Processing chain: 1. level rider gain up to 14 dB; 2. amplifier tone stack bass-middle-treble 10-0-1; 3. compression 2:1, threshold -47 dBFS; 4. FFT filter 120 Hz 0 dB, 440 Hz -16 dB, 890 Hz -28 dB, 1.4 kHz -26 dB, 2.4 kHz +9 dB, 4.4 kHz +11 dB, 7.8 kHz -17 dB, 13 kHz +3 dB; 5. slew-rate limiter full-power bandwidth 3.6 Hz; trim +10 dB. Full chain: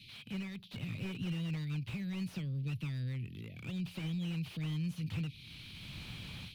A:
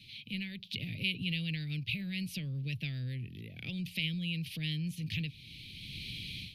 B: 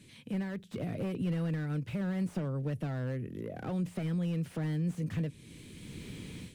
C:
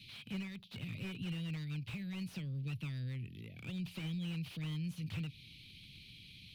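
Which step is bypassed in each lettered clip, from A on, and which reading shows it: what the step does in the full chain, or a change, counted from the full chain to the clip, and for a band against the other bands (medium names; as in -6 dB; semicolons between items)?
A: 5, distortion -5 dB; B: 4, loudness change +4.5 LU; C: 1, momentary loudness spread change +5 LU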